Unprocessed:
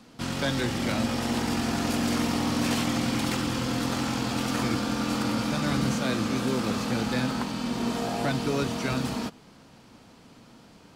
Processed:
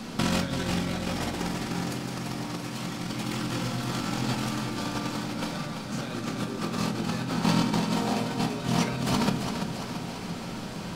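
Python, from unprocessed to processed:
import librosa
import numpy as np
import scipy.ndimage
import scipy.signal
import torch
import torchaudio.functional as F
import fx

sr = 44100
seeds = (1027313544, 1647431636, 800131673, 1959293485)

y = fx.over_compress(x, sr, threshold_db=-34.0, ratio=-0.5)
y = fx.echo_feedback(y, sr, ms=338, feedback_pct=58, wet_db=-7.0)
y = fx.room_shoebox(y, sr, seeds[0], volume_m3=480.0, walls='furnished', distance_m=1.1)
y = F.gain(torch.from_numpy(y), 4.5).numpy()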